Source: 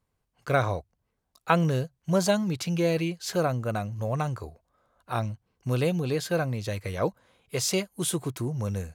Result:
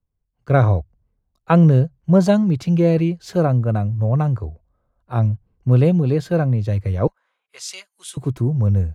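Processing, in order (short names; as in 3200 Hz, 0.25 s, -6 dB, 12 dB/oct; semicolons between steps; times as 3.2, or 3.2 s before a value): 7.07–8.17 Chebyshev band-pass 1300–9800 Hz, order 2; tilt -3.5 dB/oct; three-band expander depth 40%; gain +3 dB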